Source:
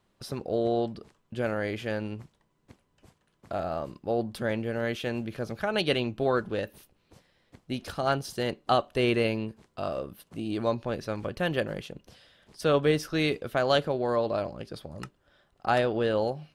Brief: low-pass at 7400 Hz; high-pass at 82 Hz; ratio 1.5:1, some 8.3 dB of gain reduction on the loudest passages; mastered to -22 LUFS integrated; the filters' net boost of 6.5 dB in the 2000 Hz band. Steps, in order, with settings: HPF 82 Hz; LPF 7400 Hz; bell 2000 Hz +8.5 dB; compressor 1.5:1, threshold -41 dBFS; gain +13 dB

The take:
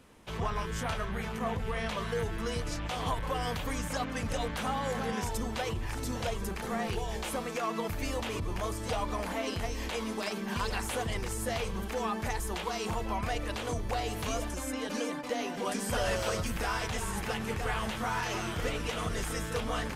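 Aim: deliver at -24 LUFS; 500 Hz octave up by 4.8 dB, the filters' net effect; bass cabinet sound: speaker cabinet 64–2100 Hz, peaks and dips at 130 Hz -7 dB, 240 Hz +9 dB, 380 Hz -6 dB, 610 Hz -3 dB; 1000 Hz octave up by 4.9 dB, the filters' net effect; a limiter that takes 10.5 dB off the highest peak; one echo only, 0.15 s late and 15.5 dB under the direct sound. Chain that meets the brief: bell 500 Hz +7 dB; bell 1000 Hz +4.5 dB; limiter -24.5 dBFS; speaker cabinet 64–2100 Hz, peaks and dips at 130 Hz -7 dB, 240 Hz +9 dB, 380 Hz -6 dB, 610 Hz -3 dB; echo 0.15 s -15.5 dB; gain +10.5 dB

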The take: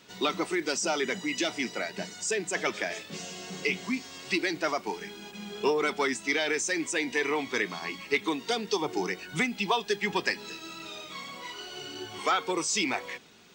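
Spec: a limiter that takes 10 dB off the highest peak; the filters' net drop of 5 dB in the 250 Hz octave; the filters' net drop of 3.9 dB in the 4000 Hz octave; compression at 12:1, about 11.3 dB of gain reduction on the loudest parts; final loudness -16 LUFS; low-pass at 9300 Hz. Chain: LPF 9300 Hz; bell 250 Hz -7 dB; bell 4000 Hz -5 dB; compressor 12:1, threshold -34 dBFS; gain +25.5 dB; limiter -6.5 dBFS

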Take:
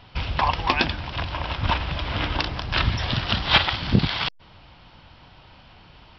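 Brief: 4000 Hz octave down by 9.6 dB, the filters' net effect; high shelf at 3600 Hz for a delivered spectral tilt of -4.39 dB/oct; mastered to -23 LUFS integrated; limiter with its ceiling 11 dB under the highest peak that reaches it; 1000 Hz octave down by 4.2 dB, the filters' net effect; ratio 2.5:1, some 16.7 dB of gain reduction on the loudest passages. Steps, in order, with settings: bell 1000 Hz -4 dB; high shelf 3600 Hz -7.5 dB; bell 4000 Hz -8 dB; compressor 2.5:1, threshold -39 dBFS; gain +17 dB; limiter -11.5 dBFS

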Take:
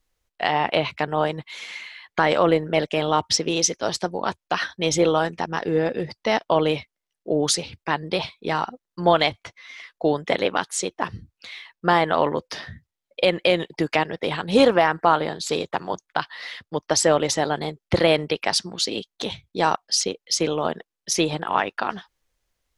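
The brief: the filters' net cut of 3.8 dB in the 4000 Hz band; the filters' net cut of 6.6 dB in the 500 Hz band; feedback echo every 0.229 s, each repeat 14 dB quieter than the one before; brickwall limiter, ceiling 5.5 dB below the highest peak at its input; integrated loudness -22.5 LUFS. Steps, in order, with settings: bell 500 Hz -8 dB; bell 4000 Hz -5 dB; limiter -12 dBFS; feedback echo 0.229 s, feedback 20%, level -14 dB; gain +5 dB

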